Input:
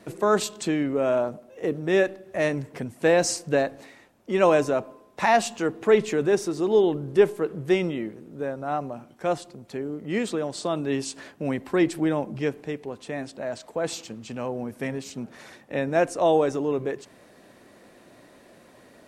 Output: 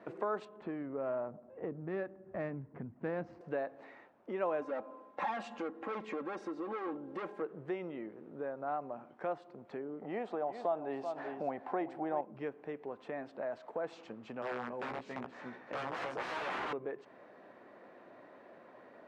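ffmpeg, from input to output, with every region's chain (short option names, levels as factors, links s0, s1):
-filter_complex "[0:a]asettb=1/sr,asplit=3[s0][s1][s2];[s0]atrim=end=0.454[s3];[s1]atrim=start=0.45:end=3.41,asetpts=PTS-STARTPTS,afade=t=in:d=0.004:c=qsin,afade=t=out:st=2.956:d=0.004:c=qsin,asubboost=boost=9.5:cutoff=200,adynamicsmooth=sensitivity=1:basefreq=1500[s4];[s2]atrim=start=3.406[s5];[s3][s4]acrossfade=d=0.004:c1=hsin:c2=qsin[s6];[s6][s5]acrossfade=d=0.004:c1=qsin:c2=hsin,asettb=1/sr,asplit=3[s7][s8][s9];[s7]atrim=end=4.614[s10];[s8]atrim=start=4.61:end=7.42,asetpts=PTS-STARTPTS,afade=t=in:d=0.004:c=qsin,afade=t=out:st=2.806:d=0.004:c=qsin,volume=15.8,asoftclip=hard,volume=0.0631,aecho=1:1:3.7:0.69,atrim=end_sample=123921[s11];[s9]atrim=start=7.416[s12];[s10][s11]acrossfade=d=0.004:c1=hsin:c2=qsin[s13];[s13][s12]acrossfade=d=0.004:c1=qsin:c2=hsin,asettb=1/sr,asplit=3[s14][s15][s16];[s14]atrim=end=10.024[s17];[s15]atrim=start=10.02:end=12.21,asetpts=PTS-STARTPTS,afade=t=in:d=0.004:c=qsin,afade=t=out:st=2.186:d=0.004:c=qsin,acompressor=mode=upward:threshold=0.0178:ratio=2.5:attack=3.2:release=140:knee=2.83:detection=peak,equalizer=f=750:w=2.5:g=15,aecho=1:1:384:0.251,atrim=end_sample=96579[s18];[s16]atrim=start=12.206[s19];[s17][s18]acrossfade=d=0.004:c1=hsin:c2=qsin[s20];[s20][s19]acrossfade=d=0.004:c1=qsin:c2=hsin,asettb=1/sr,asplit=3[s21][s22][s23];[s21]atrim=end=14.424[s24];[s22]atrim=start=14.42:end=16.73,asetpts=PTS-STARTPTS,afade=t=in:d=0.004:c=qsin,afade=t=out:st=2.306:d=0.004:c=qsin,aecho=1:1:279:0.447,atrim=end_sample=101871,aeval=exprs='(mod(15.8*val(0)+1,2)-1)/15.8':c=same,asplit=2[s25][s26];[s26]adelay=16,volume=0.531[s27];[s25][s27]amix=inputs=2:normalize=0,atrim=end_sample=101871[s28];[s23]atrim=start=16.726[s29];[s24][s28]acrossfade=d=0.004:c1=hsin:c2=qsin[s30];[s30][s29]acrossfade=d=0.004:c1=qsin:c2=hsin,lowpass=1300,acompressor=threshold=0.0158:ratio=2.5,highpass=f=800:p=1,volume=1.41"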